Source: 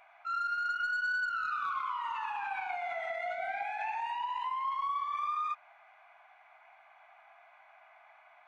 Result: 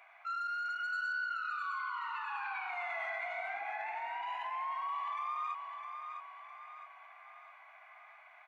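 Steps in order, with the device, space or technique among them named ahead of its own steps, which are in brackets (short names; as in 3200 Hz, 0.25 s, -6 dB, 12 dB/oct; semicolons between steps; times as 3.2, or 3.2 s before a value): laptop speaker (HPF 300 Hz 24 dB/oct; bell 1100 Hz +8 dB 0.2 oct; bell 2000 Hz +6 dB 0.52 oct; limiter -30 dBFS, peak gain reduction 11 dB); bell 920 Hz -4 dB 1.5 oct; 1.13–2.7 LPF 5100 Hz 24 dB/oct; 3.53–4.23 tilt -4 dB/oct; feedback echo 0.658 s, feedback 46%, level -7 dB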